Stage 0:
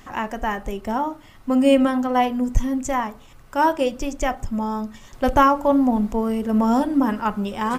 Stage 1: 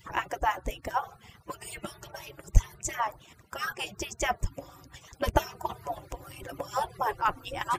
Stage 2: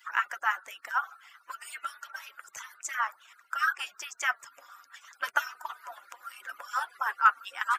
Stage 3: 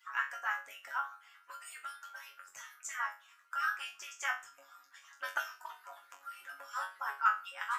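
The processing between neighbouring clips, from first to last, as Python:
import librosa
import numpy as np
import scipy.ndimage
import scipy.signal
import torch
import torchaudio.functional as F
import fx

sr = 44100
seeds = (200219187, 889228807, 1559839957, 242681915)

y1 = fx.hpss_only(x, sr, part='percussive')
y2 = fx.highpass_res(y1, sr, hz=1400.0, q=5.4)
y2 = y2 * librosa.db_to_amplitude(-3.5)
y3 = fx.resonator_bank(y2, sr, root=42, chord='fifth', decay_s=0.3)
y3 = y3 * librosa.db_to_amplitude(5.0)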